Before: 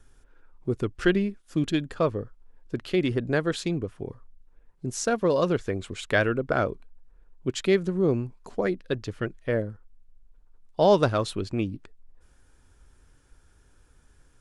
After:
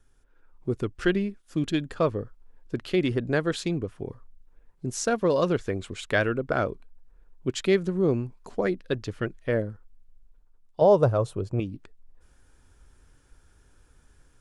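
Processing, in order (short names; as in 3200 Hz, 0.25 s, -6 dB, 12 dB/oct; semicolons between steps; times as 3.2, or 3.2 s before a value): 10.81–11.6 ten-band EQ 125 Hz +11 dB, 250 Hz -4 dB, 500 Hz +9 dB, 1000 Hz +3 dB, 2000 Hz -6 dB, 4000 Hz -8 dB; AGC gain up to 7.5 dB; gain -7 dB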